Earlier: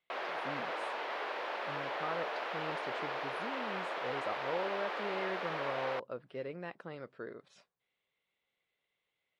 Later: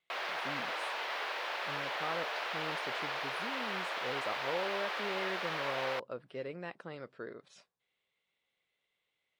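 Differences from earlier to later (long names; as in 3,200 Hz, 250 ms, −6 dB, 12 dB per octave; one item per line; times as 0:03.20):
speech: add high-shelf EQ 4,100 Hz +7.5 dB
background: add spectral tilt +3.5 dB per octave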